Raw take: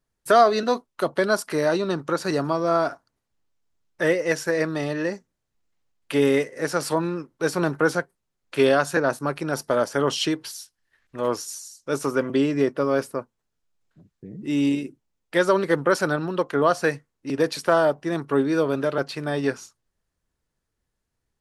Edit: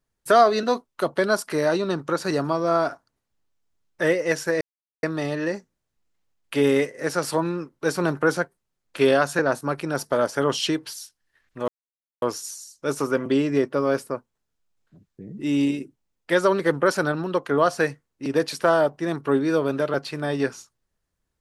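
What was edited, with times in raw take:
4.61 s: insert silence 0.42 s
11.26 s: insert silence 0.54 s

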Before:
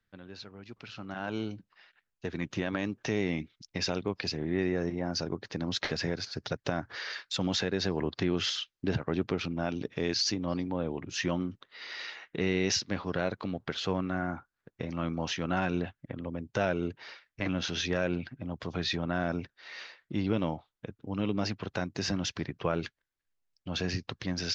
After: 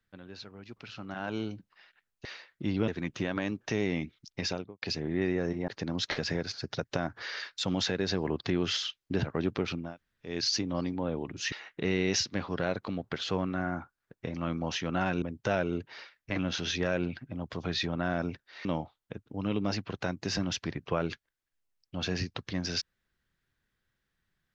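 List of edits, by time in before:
3.79–4.19 s: studio fade out
5.05–5.41 s: delete
9.59–10.05 s: room tone, crossfade 0.24 s
11.25–12.08 s: delete
15.78–16.32 s: delete
19.75–20.38 s: move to 2.25 s

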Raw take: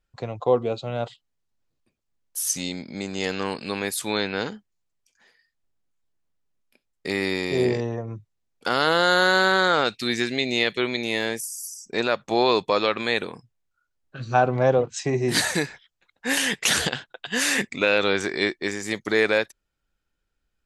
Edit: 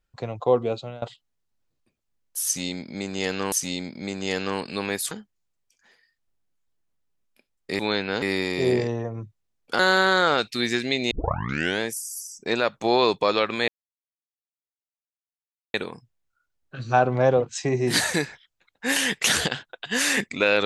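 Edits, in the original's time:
0.76–1.02 s: fade out, to -21.5 dB
2.45–3.52 s: loop, 2 plays
4.04–4.47 s: move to 7.15 s
8.72–9.26 s: delete
10.58 s: tape start 0.70 s
13.15 s: insert silence 2.06 s

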